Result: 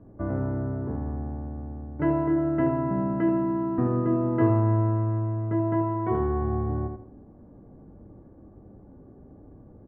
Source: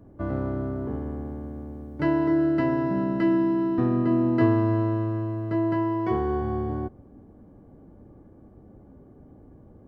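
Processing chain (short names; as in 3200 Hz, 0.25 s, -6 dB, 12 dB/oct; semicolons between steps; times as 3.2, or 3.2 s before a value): Bessel low-pass 1500 Hz, order 4; feedback echo 83 ms, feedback 26%, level -6 dB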